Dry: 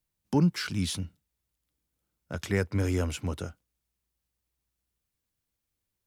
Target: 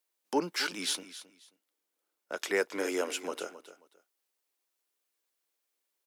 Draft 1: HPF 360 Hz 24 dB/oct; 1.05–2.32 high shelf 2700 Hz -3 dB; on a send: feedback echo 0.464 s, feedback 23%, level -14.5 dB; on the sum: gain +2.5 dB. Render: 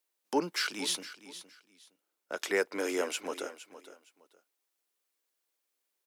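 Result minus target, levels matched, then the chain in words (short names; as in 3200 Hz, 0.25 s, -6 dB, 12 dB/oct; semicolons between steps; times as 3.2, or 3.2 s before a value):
echo 0.196 s late
HPF 360 Hz 24 dB/oct; 1.05–2.32 high shelf 2700 Hz -3 dB; on a send: feedback echo 0.268 s, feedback 23%, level -14.5 dB; on the sum: gain +2.5 dB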